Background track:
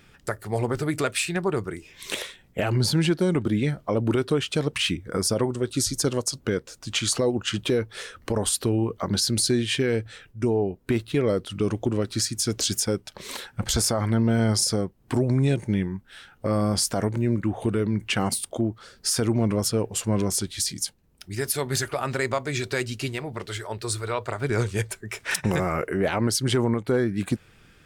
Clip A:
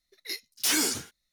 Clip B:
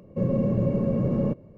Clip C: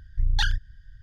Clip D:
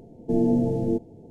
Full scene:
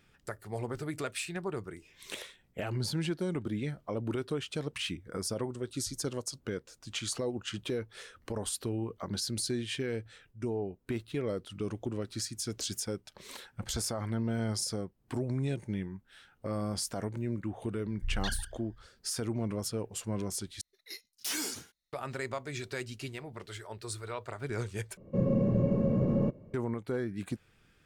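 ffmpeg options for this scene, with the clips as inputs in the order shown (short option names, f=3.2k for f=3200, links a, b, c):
-filter_complex "[0:a]volume=-11dB[a];[3:a]asplit=2[b][c];[c]adelay=152,lowpass=f=4.1k:p=1,volume=-13.5dB,asplit=2[d][e];[e]adelay=152,lowpass=f=4.1k:p=1,volume=0.17[f];[b][d][f]amix=inputs=3:normalize=0[g];[a]asplit=3[h][i][j];[h]atrim=end=20.614[k];[1:a]atrim=end=1.32,asetpts=PTS-STARTPTS,volume=-9.5dB[l];[i]atrim=start=21.926:end=24.974[m];[2:a]atrim=end=1.57,asetpts=PTS-STARTPTS,volume=-3.5dB[n];[j]atrim=start=26.536[o];[g]atrim=end=1.02,asetpts=PTS-STARTPTS,volume=-11dB,afade=t=in:d=0.004:c=hsin,afade=t=out:st=1.016:d=0.004:c=hsin,adelay=17850[p];[k][l]acrossfade=d=0.004:c1=hsin:c2=hsin[q];[q][m]acrossfade=d=0.004:c1=hsin:c2=hsin[r];[r][n]acrossfade=d=0.004:c1=hsin:c2=hsin[s];[s][o]acrossfade=d=0.004:c1=hsin:c2=hsin[t];[t][p]amix=inputs=2:normalize=0"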